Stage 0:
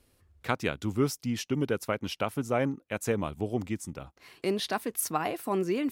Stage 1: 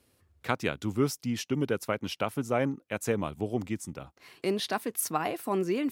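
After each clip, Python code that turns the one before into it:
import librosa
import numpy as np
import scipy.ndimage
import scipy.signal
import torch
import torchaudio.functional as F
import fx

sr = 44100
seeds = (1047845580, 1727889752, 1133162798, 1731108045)

y = scipy.signal.sosfilt(scipy.signal.butter(2, 80.0, 'highpass', fs=sr, output='sos'), x)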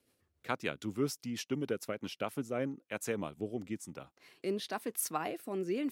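y = fx.peak_eq(x, sr, hz=62.0, db=-10.5, octaves=1.9)
y = fx.rotary_switch(y, sr, hz=7.0, then_hz=1.0, switch_at_s=1.62)
y = y * 10.0 ** (-3.5 / 20.0)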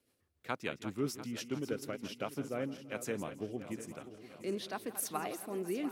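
y = fx.reverse_delay_fb(x, sr, ms=347, feedback_pct=68, wet_db=-11.5)
y = fx.echo_feedback(y, sr, ms=165, feedback_pct=47, wet_db=-17)
y = y * 10.0 ** (-2.5 / 20.0)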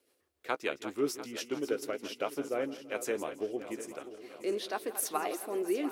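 y = fx.low_shelf_res(x, sr, hz=250.0, db=-12.0, q=1.5)
y = fx.doubler(y, sr, ms=14.0, db=-12.5)
y = y * 10.0 ** (3.5 / 20.0)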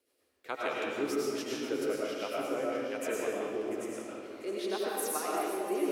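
y = fx.rev_freeverb(x, sr, rt60_s=1.7, hf_ratio=0.75, predelay_ms=65, drr_db=-5.0)
y = y * 10.0 ** (-4.5 / 20.0)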